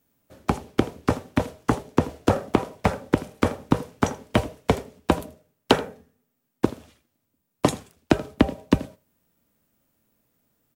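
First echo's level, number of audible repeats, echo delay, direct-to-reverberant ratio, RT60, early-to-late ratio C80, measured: -20.0 dB, 1, 81 ms, no reverb, no reverb, no reverb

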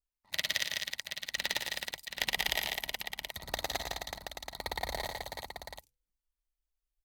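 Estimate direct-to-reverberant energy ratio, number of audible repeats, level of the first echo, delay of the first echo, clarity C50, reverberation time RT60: no reverb, 5, -7.0 dB, 114 ms, no reverb, no reverb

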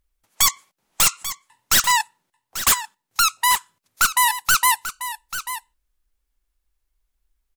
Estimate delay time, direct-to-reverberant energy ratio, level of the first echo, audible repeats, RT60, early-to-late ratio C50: 840 ms, no reverb, -12.0 dB, 1, no reverb, no reverb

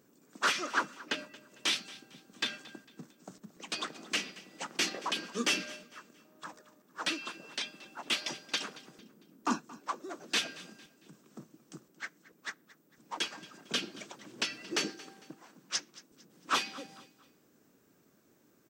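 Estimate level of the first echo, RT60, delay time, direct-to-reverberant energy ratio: -19.5 dB, no reverb, 226 ms, no reverb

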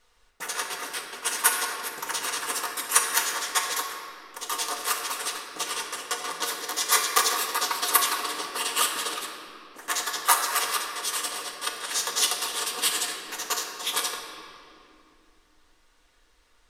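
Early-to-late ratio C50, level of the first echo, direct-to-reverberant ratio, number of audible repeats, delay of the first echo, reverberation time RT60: 4.0 dB, no echo, -0.5 dB, no echo, no echo, 2.6 s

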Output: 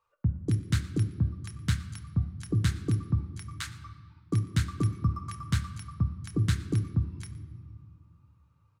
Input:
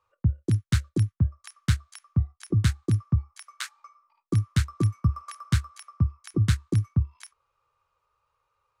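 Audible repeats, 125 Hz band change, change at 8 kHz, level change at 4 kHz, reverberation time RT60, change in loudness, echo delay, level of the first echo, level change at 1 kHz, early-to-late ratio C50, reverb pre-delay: 1, -3.5 dB, -3.0 dB, -3.0 dB, 1.9 s, -4.0 dB, 117 ms, -21.5 dB, -1.5 dB, 12.5 dB, 4 ms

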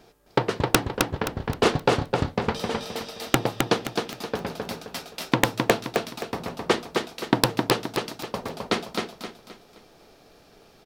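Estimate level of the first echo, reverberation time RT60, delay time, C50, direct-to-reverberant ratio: -4.0 dB, no reverb, 262 ms, no reverb, no reverb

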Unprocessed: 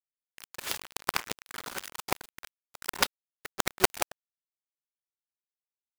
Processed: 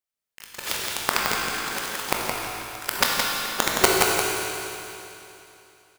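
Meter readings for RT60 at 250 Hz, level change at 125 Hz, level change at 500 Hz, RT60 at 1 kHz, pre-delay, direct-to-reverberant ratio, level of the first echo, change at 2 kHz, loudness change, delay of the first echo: 3.0 s, +9.5 dB, +9.5 dB, 3.0 s, 19 ms, -4.0 dB, -5.0 dB, +9.5 dB, +8.0 dB, 169 ms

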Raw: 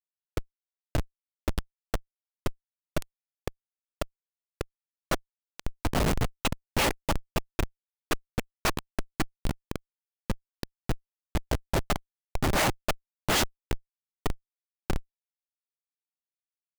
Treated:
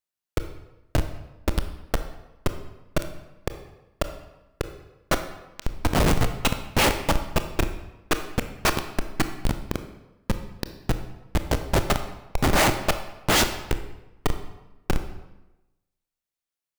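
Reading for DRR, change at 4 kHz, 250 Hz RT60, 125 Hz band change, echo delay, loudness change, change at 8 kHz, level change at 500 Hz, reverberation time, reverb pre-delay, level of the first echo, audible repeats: 8.0 dB, +5.5 dB, 1.1 s, +5.5 dB, no echo, +5.5 dB, +5.5 dB, +6.0 dB, 1.0 s, 24 ms, no echo, no echo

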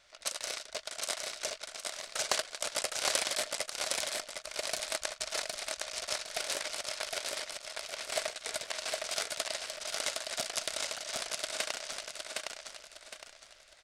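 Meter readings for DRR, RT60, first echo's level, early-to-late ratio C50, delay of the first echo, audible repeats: no reverb, no reverb, -3.0 dB, no reverb, 762 ms, 4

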